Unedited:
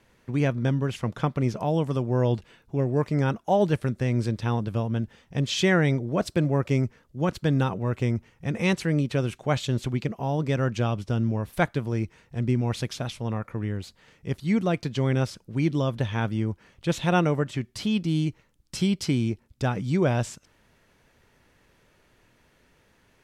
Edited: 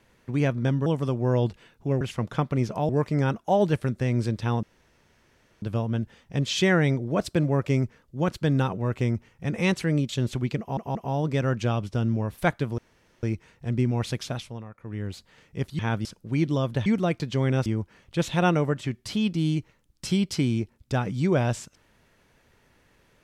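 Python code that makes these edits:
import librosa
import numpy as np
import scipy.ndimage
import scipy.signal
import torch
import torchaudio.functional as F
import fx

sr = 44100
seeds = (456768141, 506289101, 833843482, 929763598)

y = fx.edit(x, sr, fx.move(start_s=0.86, length_s=0.88, to_s=2.89),
    fx.insert_room_tone(at_s=4.63, length_s=0.99),
    fx.cut(start_s=9.1, length_s=0.5),
    fx.stutter(start_s=10.1, slice_s=0.18, count=3),
    fx.insert_room_tone(at_s=11.93, length_s=0.45),
    fx.fade_down_up(start_s=13.02, length_s=0.79, db=-12.5, fade_s=0.32),
    fx.swap(start_s=14.49, length_s=0.8, other_s=16.1, other_length_s=0.26), tone=tone)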